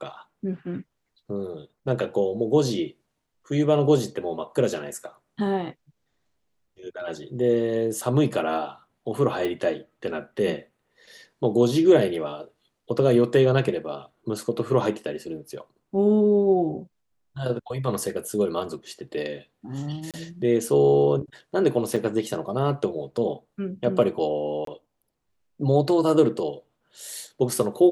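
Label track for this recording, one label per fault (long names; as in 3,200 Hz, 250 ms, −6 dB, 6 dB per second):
9.450000	9.450000	click −16 dBFS
20.110000	20.140000	drop-out 27 ms
21.960000	21.960000	drop-out 4.7 ms
24.650000	24.670000	drop-out 23 ms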